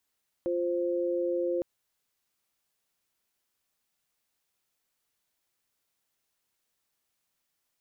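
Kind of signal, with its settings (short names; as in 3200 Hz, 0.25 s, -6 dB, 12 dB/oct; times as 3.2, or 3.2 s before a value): chord F4/C5 sine, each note -29 dBFS 1.16 s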